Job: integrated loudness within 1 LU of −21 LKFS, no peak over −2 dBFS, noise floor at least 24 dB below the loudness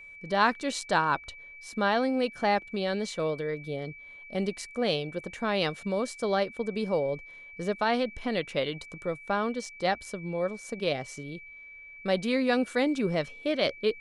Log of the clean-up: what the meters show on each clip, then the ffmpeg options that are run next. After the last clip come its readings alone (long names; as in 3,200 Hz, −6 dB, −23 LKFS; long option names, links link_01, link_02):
interfering tone 2,300 Hz; level of the tone −45 dBFS; integrated loudness −29.5 LKFS; sample peak −10.5 dBFS; target loudness −21.0 LKFS
→ -af "bandreject=frequency=2300:width=30"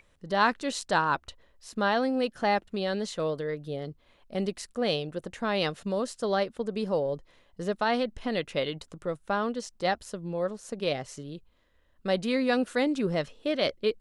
interfering tone none found; integrated loudness −29.5 LKFS; sample peak −11.0 dBFS; target loudness −21.0 LKFS
→ -af "volume=8.5dB"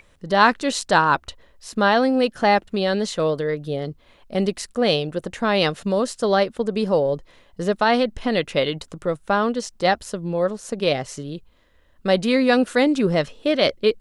integrated loudness −21.0 LKFS; sample peak −2.5 dBFS; background noise floor −56 dBFS